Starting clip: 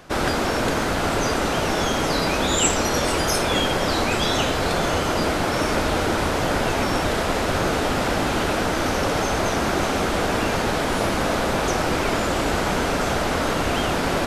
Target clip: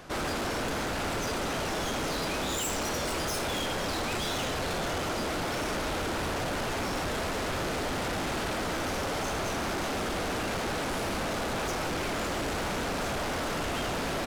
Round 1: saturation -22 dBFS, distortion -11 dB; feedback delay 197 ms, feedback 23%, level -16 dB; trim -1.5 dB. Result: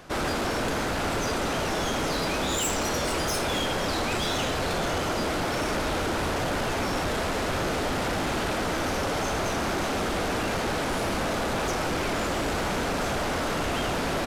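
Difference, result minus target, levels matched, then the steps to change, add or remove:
saturation: distortion -4 dB
change: saturation -28 dBFS, distortion -7 dB

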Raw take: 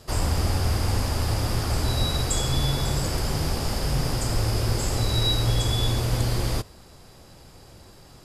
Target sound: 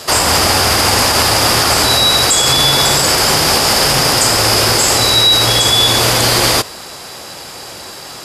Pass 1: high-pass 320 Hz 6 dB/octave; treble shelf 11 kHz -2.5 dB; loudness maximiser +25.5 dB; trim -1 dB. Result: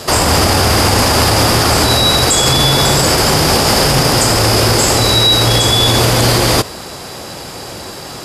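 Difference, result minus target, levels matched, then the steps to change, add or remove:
250 Hz band +5.5 dB
change: high-pass 930 Hz 6 dB/octave

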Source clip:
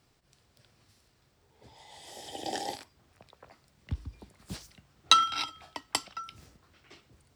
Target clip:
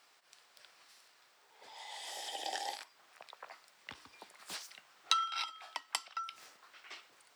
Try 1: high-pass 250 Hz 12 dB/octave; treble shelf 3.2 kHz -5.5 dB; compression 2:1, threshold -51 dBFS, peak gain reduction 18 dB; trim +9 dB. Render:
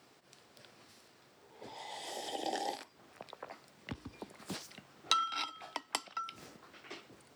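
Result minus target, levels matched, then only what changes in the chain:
250 Hz band +16.5 dB
change: high-pass 940 Hz 12 dB/octave

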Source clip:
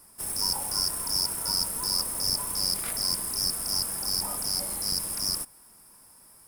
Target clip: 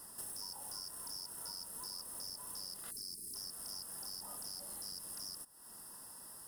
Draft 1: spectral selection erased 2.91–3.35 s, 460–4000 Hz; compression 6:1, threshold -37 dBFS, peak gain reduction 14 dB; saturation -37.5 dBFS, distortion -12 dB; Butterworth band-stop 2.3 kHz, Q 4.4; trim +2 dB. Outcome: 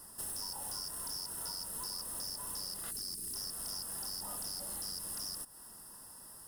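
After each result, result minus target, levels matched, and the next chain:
compression: peak gain reduction -7 dB; 125 Hz band +2.5 dB
spectral selection erased 2.91–3.35 s, 460–4000 Hz; compression 6:1, threshold -45.5 dBFS, peak gain reduction 21 dB; saturation -37.5 dBFS, distortion -20 dB; Butterworth band-stop 2.3 kHz, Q 4.4; trim +2 dB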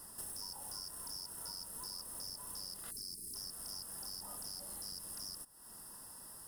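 125 Hz band +3.5 dB
spectral selection erased 2.91–3.35 s, 460–4000 Hz; compression 6:1, threshold -45.5 dBFS, peak gain reduction 21 dB; saturation -37.5 dBFS, distortion -20 dB; Butterworth band-stop 2.3 kHz, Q 4.4; bass shelf 110 Hz -7.5 dB; trim +2 dB

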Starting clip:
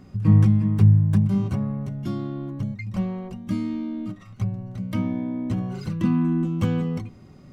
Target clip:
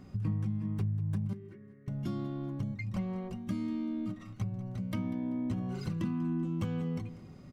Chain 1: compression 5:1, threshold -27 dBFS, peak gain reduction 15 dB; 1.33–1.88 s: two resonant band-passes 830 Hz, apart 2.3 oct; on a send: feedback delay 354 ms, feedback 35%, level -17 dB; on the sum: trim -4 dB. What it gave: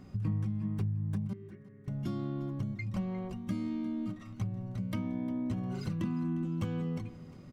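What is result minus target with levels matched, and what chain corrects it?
echo 161 ms late
compression 5:1, threshold -27 dBFS, peak gain reduction 15 dB; 1.33–1.88 s: two resonant band-passes 830 Hz, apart 2.3 oct; on a send: feedback delay 193 ms, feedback 35%, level -17 dB; on the sum: trim -4 dB

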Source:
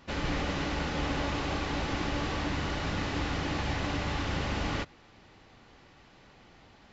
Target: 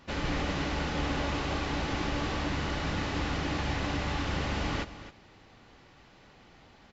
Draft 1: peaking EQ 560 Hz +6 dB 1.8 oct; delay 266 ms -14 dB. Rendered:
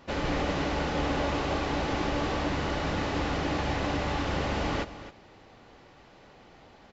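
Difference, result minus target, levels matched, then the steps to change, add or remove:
500 Hz band +3.0 dB
remove: peaking EQ 560 Hz +6 dB 1.8 oct

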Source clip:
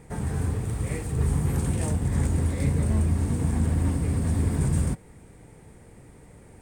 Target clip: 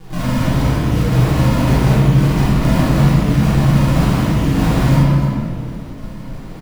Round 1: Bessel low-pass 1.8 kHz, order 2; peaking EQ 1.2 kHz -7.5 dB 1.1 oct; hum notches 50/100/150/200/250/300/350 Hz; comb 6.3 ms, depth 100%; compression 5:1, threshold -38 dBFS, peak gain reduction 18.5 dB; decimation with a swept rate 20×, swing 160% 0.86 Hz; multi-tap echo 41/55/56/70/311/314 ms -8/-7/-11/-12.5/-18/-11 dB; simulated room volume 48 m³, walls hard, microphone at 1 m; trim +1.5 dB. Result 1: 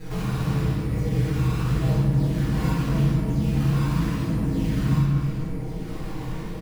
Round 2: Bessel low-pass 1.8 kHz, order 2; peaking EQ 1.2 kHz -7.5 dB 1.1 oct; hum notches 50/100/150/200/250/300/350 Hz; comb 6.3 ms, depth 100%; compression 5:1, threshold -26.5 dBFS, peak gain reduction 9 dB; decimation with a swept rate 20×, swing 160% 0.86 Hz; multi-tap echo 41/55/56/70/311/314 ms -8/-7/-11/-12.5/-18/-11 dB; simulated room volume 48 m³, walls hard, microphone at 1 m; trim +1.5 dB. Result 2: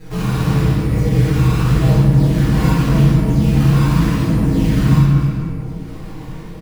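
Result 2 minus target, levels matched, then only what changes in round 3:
decimation with a swept rate: distortion -11 dB
change: decimation with a swept rate 65×, swing 160% 0.86 Hz

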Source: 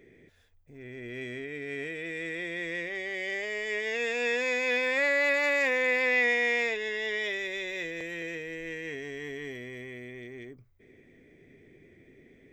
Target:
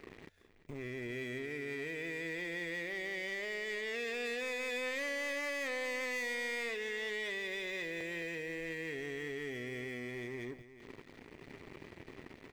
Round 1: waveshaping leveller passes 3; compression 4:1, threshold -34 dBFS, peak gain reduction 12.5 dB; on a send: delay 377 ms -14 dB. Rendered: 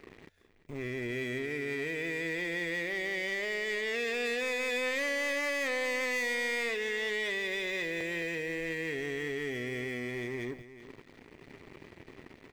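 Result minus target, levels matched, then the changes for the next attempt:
compression: peak gain reduction -5.5 dB
change: compression 4:1, threshold -41.5 dBFS, peak gain reduction 18.5 dB

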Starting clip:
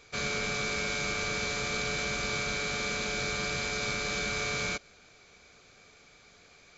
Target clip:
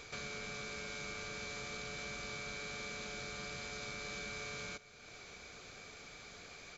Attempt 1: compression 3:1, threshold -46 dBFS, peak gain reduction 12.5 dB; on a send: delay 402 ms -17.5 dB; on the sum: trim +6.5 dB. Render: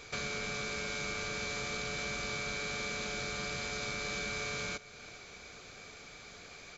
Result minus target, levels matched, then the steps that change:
compression: peak gain reduction -6.5 dB
change: compression 3:1, threshold -56 dBFS, peak gain reduction 19.5 dB

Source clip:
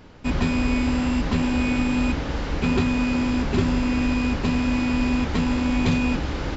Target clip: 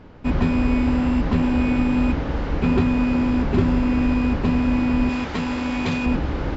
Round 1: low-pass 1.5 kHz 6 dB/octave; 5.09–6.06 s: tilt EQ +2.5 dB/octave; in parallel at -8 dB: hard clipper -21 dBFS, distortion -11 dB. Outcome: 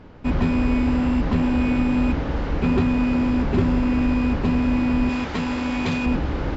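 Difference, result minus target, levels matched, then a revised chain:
hard clipper: distortion +35 dB
low-pass 1.5 kHz 6 dB/octave; 5.09–6.06 s: tilt EQ +2.5 dB/octave; in parallel at -8 dB: hard clipper -10.5 dBFS, distortion -47 dB

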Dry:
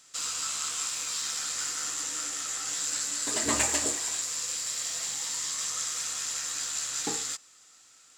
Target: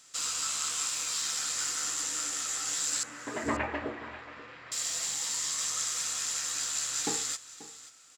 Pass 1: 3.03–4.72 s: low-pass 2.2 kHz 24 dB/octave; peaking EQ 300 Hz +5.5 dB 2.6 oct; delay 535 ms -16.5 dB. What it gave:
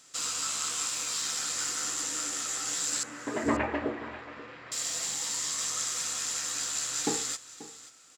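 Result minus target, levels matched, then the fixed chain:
250 Hz band +5.0 dB
3.03–4.72 s: low-pass 2.2 kHz 24 dB/octave; delay 535 ms -16.5 dB

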